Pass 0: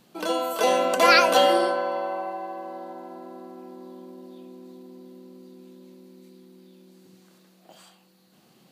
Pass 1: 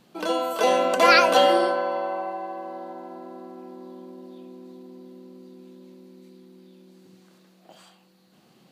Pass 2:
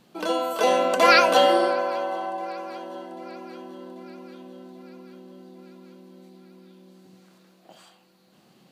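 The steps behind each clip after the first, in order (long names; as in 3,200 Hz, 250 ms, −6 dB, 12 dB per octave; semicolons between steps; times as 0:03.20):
high-shelf EQ 7,200 Hz −7 dB; level +1 dB
feedback echo with a long and a short gap by turns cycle 790 ms, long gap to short 3 to 1, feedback 60%, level −24 dB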